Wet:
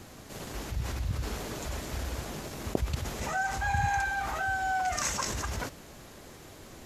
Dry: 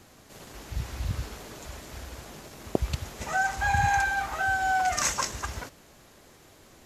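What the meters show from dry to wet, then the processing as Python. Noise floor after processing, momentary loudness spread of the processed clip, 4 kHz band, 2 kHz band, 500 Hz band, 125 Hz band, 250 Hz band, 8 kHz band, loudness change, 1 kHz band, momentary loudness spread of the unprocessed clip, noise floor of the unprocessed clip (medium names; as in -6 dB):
-49 dBFS, 20 LU, -2.0 dB, -4.5 dB, -0.5 dB, 0.0 dB, +0.5 dB, -3.0 dB, -4.5 dB, -4.0 dB, 19 LU, -55 dBFS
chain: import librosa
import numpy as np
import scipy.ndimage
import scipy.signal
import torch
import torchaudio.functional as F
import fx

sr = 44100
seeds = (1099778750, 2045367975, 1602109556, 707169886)

p1 = fx.low_shelf(x, sr, hz=420.0, db=3.5)
p2 = fx.over_compress(p1, sr, threshold_db=-37.0, ratio=-1.0)
p3 = p1 + (p2 * 10.0 ** (0.0 / 20.0))
y = p3 * 10.0 ** (-6.0 / 20.0)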